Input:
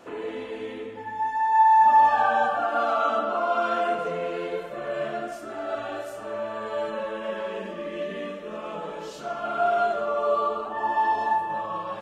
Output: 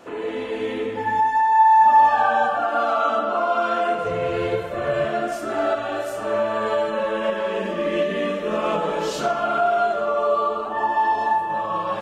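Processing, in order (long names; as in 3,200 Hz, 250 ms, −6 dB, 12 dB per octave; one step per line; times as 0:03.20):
0:04.03–0:05.06: sub-octave generator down 2 octaves, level −4 dB
camcorder AGC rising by 8.2 dB per second
level +3 dB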